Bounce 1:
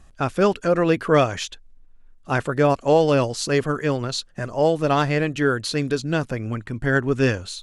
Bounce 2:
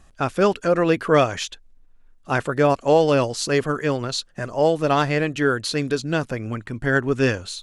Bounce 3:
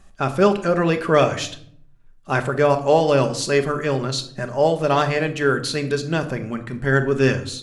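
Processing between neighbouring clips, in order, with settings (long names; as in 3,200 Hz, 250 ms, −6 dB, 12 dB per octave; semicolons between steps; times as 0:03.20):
low-shelf EQ 190 Hz −4 dB; level +1 dB
rectangular room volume 1,000 cubic metres, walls furnished, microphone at 1.2 metres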